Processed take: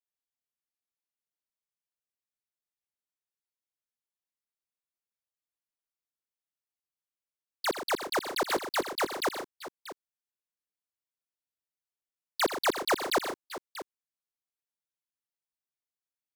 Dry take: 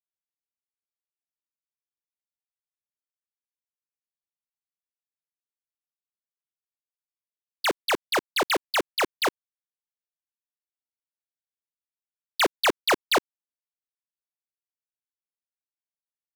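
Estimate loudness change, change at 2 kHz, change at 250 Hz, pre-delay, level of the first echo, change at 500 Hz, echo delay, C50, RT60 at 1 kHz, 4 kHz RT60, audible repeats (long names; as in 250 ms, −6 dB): −5.5 dB, −6.5 dB, −3.5 dB, no reverb audible, −13.0 dB, −3.5 dB, 81 ms, no reverb audible, no reverb audible, no reverb audible, 4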